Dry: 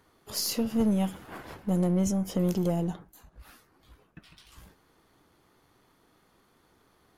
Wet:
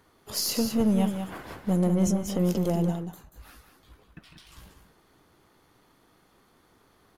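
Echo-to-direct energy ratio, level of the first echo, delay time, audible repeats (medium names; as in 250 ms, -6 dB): -7.5 dB, -7.5 dB, 187 ms, 1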